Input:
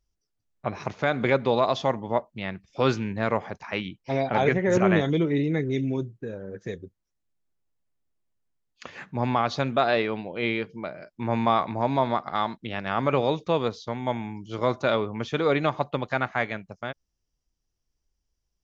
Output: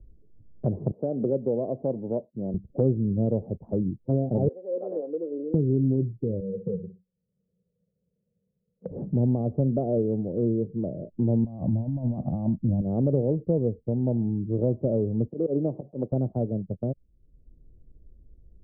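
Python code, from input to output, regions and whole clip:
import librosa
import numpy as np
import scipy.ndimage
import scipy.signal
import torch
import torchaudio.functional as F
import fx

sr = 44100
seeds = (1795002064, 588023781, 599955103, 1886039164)

y = fx.chain(x, sr, fx.highpass(hz=200.0, slope=12),
    fx.low_shelf(hz=400.0, db=-7.0), at=(0.91, 2.54))
y = fx.chain(y, sr, fx.highpass(hz=570.0, slope=24),
    fx.peak_eq(hz=720.0, db=-8.5, octaves=1.1),
    fx.comb(ms=3.9, depth=0.46), at=(4.48, 5.54))
y = fx.chain(y, sr, fx.double_bandpass(hz=300.0, octaves=1.4),
    fx.echo_feedback(ms=60, feedback_pct=18, wet_db=-12.5), at=(6.4, 8.91))
y = fx.chain(y, sr, fx.tilt_shelf(db=5.5, hz=860.0),
    fx.over_compress(threshold_db=-30.0, ratio=-1.0),
    fx.fixed_phaser(hz=1000.0, stages=4), at=(11.44, 12.81))
y = fx.chain(y, sr, fx.block_float(bits=5),
    fx.auto_swell(attack_ms=109.0),
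    fx.highpass(hz=230.0, slope=12), at=(15.27, 16.12))
y = scipy.signal.sosfilt(scipy.signal.butter(6, 550.0, 'lowpass', fs=sr, output='sos'), y)
y = fx.low_shelf(y, sr, hz=220.0, db=10.0)
y = fx.band_squash(y, sr, depth_pct=70)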